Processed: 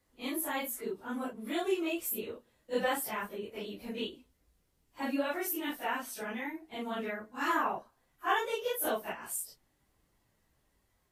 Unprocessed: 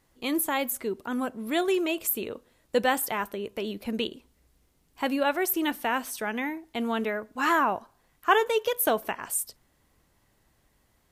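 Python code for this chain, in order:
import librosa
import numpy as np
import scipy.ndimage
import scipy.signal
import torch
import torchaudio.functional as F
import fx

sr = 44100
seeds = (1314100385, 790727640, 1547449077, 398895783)

y = fx.phase_scramble(x, sr, seeds[0], window_ms=100)
y = y * librosa.db_to_amplitude(-7.0)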